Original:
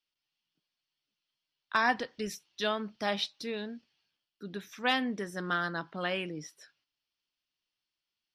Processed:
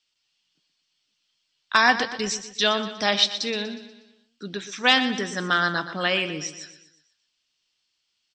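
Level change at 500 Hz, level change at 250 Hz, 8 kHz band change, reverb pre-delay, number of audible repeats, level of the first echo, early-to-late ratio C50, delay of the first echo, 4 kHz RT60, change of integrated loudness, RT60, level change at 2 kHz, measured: +7.5 dB, +7.0 dB, +15.5 dB, no reverb audible, 4, −12.0 dB, no reverb audible, 121 ms, no reverb audible, +10.5 dB, no reverb audible, +10.5 dB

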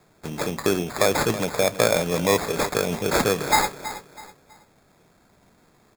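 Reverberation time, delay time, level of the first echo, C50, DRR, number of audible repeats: no reverb audible, 325 ms, −13.5 dB, no reverb audible, no reverb audible, 3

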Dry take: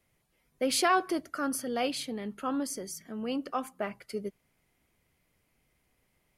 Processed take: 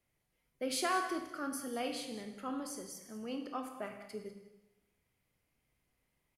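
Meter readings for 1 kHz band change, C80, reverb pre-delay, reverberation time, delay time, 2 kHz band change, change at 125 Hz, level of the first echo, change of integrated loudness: −7.0 dB, 8.5 dB, 24 ms, 0.95 s, 196 ms, −6.5 dB, −8.0 dB, −15.5 dB, −7.0 dB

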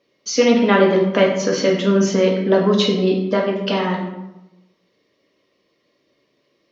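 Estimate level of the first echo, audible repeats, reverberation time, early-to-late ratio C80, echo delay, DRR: no echo audible, no echo audible, 0.95 s, 7.5 dB, no echo audible, −1.5 dB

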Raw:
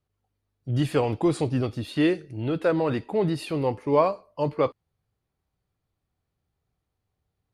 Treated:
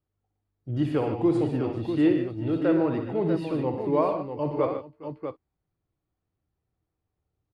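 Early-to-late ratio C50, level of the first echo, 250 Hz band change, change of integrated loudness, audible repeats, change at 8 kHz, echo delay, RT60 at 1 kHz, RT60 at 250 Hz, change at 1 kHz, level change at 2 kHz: no reverb audible, −9.0 dB, +2.0 dB, −0.5 dB, 5, can't be measured, 61 ms, no reverb audible, no reverb audible, −3.0 dB, −5.5 dB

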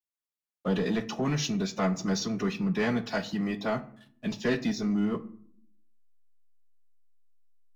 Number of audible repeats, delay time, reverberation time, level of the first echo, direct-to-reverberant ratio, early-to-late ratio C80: no echo audible, no echo audible, 0.55 s, no echo audible, 8.0 dB, 20.0 dB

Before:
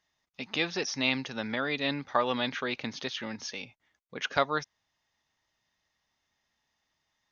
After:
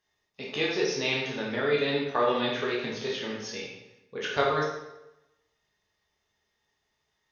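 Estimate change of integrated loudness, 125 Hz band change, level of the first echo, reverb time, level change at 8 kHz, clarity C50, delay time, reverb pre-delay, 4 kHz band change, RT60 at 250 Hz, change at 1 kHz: +2.5 dB, +3.5 dB, no echo audible, 0.95 s, can't be measured, 2.0 dB, no echo audible, 9 ms, +1.0 dB, 0.95 s, +1.5 dB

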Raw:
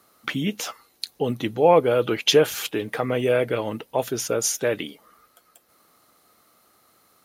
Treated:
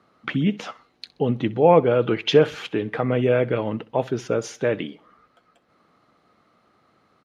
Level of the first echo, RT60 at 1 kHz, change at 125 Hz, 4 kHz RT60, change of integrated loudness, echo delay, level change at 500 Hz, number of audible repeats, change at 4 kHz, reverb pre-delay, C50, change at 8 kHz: −21.0 dB, no reverb audible, +5.5 dB, no reverb audible, +1.0 dB, 64 ms, +1.0 dB, 2, −5.0 dB, no reverb audible, no reverb audible, −15.0 dB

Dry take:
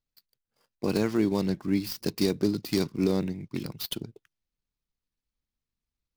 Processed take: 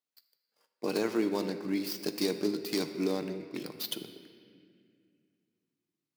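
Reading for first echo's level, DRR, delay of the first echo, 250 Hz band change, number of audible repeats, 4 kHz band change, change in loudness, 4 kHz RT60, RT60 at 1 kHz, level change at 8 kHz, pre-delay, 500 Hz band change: no echo audible, 7.5 dB, no echo audible, −5.5 dB, no echo audible, −1.5 dB, −4.5 dB, 1.7 s, 2.0 s, −1.5 dB, 7 ms, −3.0 dB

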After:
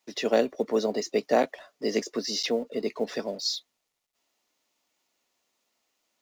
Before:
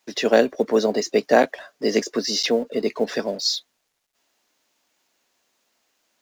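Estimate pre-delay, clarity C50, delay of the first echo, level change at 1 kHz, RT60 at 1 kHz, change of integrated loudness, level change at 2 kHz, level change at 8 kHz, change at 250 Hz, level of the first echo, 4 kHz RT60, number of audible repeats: no reverb audible, no reverb audible, no echo audible, −6.5 dB, no reverb audible, −6.5 dB, −9.0 dB, −6.5 dB, −6.5 dB, no echo audible, no reverb audible, no echo audible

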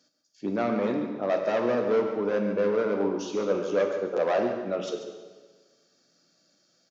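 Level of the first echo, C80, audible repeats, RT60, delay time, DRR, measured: −10.5 dB, 6.0 dB, 1, 1.4 s, 141 ms, 3.5 dB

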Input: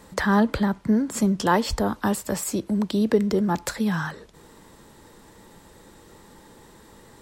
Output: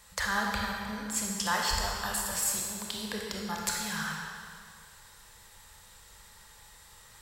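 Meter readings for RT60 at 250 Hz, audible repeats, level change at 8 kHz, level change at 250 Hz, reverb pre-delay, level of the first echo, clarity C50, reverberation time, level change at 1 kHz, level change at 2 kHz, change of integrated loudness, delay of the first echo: 1.9 s, no echo audible, +2.5 dB, −17.5 dB, 23 ms, no echo audible, 0.0 dB, 2.1 s, −6.5 dB, −2.0 dB, −8.0 dB, no echo audible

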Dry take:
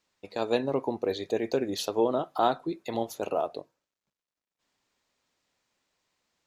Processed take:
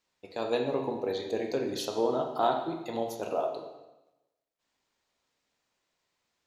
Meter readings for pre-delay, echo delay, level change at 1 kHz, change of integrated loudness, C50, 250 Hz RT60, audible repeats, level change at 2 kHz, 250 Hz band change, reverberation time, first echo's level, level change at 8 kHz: 7 ms, no echo audible, −1.5 dB, −1.5 dB, 6.0 dB, 1.0 s, no echo audible, −2.0 dB, −3.0 dB, 1.0 s, no echo audible, −2.5 dB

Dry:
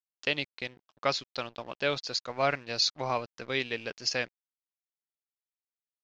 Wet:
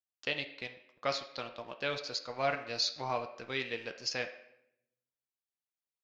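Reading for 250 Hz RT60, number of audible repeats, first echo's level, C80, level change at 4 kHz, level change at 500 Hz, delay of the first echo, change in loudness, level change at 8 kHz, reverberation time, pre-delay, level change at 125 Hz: 1.0 s, no echo audible, no echo audible, 13.5 dB, −5.0 dB, −4.5 dB, no echo audible, −4.5 dB, can't be measured, 0.80 s, 7 ms, −5.5 dB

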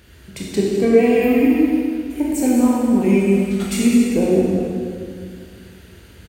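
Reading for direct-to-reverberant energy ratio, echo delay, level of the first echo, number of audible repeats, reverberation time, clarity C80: −5.0 dB, 207 ms, −9.0 dB, 1, 2.2 s, −0.5 dB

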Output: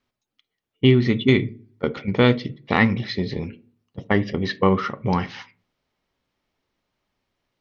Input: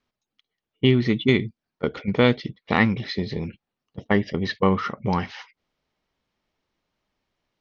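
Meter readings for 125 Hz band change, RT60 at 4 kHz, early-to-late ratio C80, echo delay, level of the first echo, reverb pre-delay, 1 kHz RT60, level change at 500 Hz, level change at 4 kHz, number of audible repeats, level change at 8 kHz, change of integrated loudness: +3.0 dB, 0.35 s, 26.5 dB, no echo audible, no echo audible, 3 ms, 0.35 s, +1.5 dB, +1.0 dB, no echo audible, can't be measured, +2.0 dB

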